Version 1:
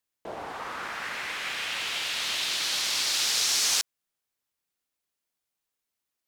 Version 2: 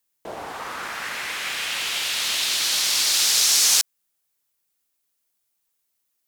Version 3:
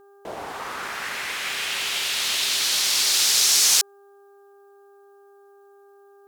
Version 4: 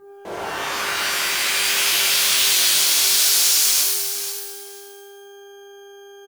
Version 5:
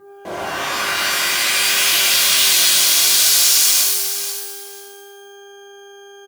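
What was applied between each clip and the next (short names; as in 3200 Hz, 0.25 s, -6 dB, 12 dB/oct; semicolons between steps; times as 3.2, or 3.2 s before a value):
high shelf 6500 Hz +10 dB; gain +3 dB
buzz 400 Hz, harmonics 4, -52 dBFS -8 dB/oct
feedback echo 0.488 s, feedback 17%, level -18 dB; limiter -14.5 dBFS, peak gain reduction 10.5 dB; shimmer reverb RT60 1.1 s, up +12 st, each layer -2 dB, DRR -4 dB
notch comb 440 Hz; gain +4.5 dB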